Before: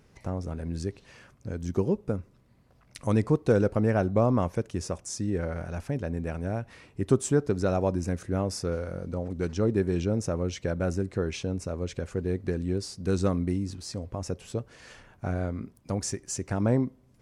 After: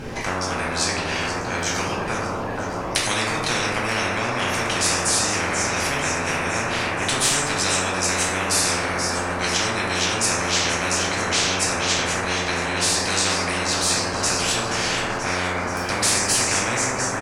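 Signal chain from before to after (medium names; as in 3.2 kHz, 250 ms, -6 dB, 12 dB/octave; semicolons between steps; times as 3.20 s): treble shelf 5.6 kHz -9 dB; in parallel at +2 dB: peak limiter -19.5 dBFS, peak gain reduction 10 dB; on the sum: frequency-shifting echo 479 ms, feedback 64%, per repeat +86 Hz, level -14 dB; reverberation RT60 0.95 s, pre-delay 4 ms, DRR -4.5 dB; spectrum-flattening compressor 10:1; trim -3 dB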